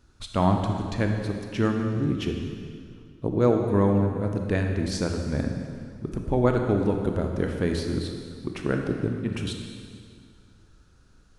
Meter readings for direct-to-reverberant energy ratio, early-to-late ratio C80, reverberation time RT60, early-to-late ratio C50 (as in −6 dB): 3.0 dB, 5.0 dB, 2.1 s, 4.0 dB